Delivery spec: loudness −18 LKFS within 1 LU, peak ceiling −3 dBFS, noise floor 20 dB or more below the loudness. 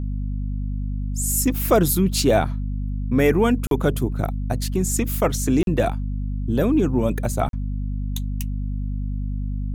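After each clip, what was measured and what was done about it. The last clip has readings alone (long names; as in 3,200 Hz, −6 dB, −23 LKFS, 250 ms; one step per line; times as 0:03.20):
number of dropouts 3; longest dropout 42 ms; mains hum 50 Hz; hum harmonics up to 250 Hz; level of the hum −23 dBFS; integrated loudness −22.5 LKFS; sample peak −5.5 dBFS; target loudness −18.0 LKFS
→ repair the gap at 0:03.67/0:05.63/0:07.49, 42 ms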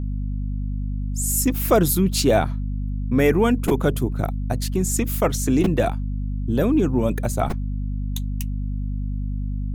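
number of dropouts 0; mains hum 50 Hz; hum harmonics up to 250 Hz; level of the hum −23 dBFS
→ hum removal 50 Hz, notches 5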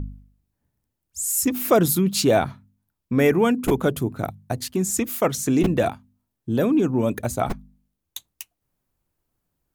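mains hum none found; integrated loudness −22.0 LKFS; sample peak −6.0 dBFS; target loudness −18.0 LKFS
→ level +4 dB
brickwall limiter −3 dBFS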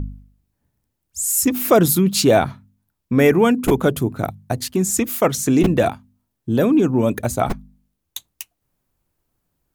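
integrated loudness −18.0 LKFS; sample peak −3.0 dBFS; background noise floor −76 dBFS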